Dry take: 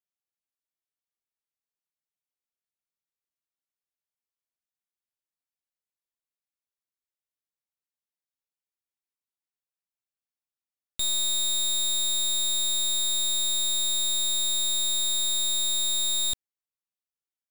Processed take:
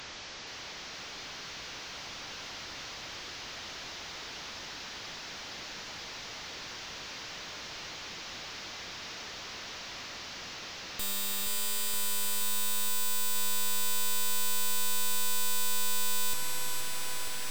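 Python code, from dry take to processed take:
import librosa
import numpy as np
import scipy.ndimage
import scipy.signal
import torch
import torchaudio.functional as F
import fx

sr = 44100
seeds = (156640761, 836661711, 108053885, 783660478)

y = fx.delta_mod(x, sr, bps=32000, step_db=-41.5)
y = (np.mod(10.0 ** (30.5 / 20.0) * y + 1.0, 2.0) - 1.0) / 10.0 ** (30.5 / 20.0)
y = fx.echo_crushed(y, sr, ms=472, feedback_pct=80, bits=11, wet_db=-6.0)
y = y * 10.0 ** (4.5 / 20.0)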